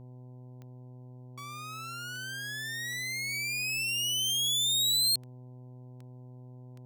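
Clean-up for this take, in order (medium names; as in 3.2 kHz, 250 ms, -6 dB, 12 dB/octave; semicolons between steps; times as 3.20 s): de-click; de-hum 125.6 Hz, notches 8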